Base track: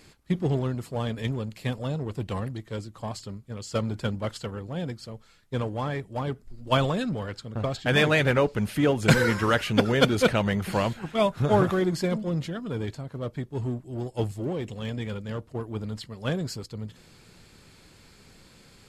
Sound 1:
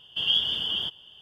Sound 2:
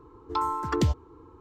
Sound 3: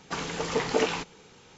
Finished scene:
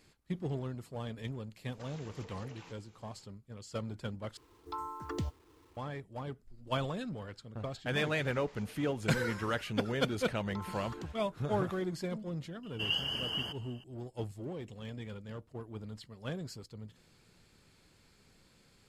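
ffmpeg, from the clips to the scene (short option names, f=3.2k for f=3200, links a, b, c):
-filter_complex "[3:a]asplit=2[a][b];[2:a]asplit=2[c][d];[0:a]volume=-11dB[e];[a]acompressor=threshold=-36dB:ratio=6:attack=3.2:release=140:knee=1:detection=peak[f];[c]acrusher=bits=8:mix=0:aa=0.000001[g];[b]acompressor=threshold=-45dB:ratio=6:attack=3.2:release=140:knee=1:detection=peak[h];[d]acompressor=threshold=-30dB:ratio=6:attack=3.2:release=140:knee=1:detection=peak[i];[1:a]asuperstop=centerf=3700:order=8:qfactor=2[j];[e]asplit=2[k][l];[k]atrim=end=4.374[m];[g]atrim=end=1.4,asetpts=PTS-STARTPTS,volume=-12.5dB[n];[l]atrim=start=5.766[o];[f]atrim=end=1.57,asetpts=PTS-STARTPTS,volume=-13.5dB,afade=t=in:d=0.004:c=hsin,afade=t=out:st=1.566:d=0.004:c=hsin,adelay=1690[p];[h]atrim=end=1.57,asetpts=PTS-STARTPTS,volume=-9.5dB,afade=t=in:d=0.004:c=hsin,afade=t=out:st=1.566:d=0.004:c=hsin,adelay=7880[q];[i]atrim=end=1.4,asetpts=PTS-STARTPTS,volume=-12dB,afade=t=in:d=0.004:c=hsin,afade=t=out:st=1.396:d=0.004:c=hsin,adelay=10200[r];[j]atrim=end=1.21,asetpts=PTS-STARTPTS,afade=t=in:d=0.004:c=hsin,afade=t=out:st=1.206:d=0.004:c=hsin,adelay=12630[s];[m][n]acrossfade=d=0.004:c1=hsin:c2=hsin[t];[t][o]acrossfade=d=0.004:c1=hsin:c2=hsin[u];[u][p][q][r][s]amix=inputs=5:normalize=0"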